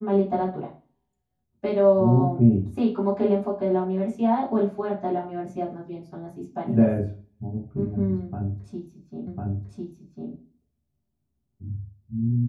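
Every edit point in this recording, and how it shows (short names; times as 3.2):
9.27 repeat of the last 1.05 s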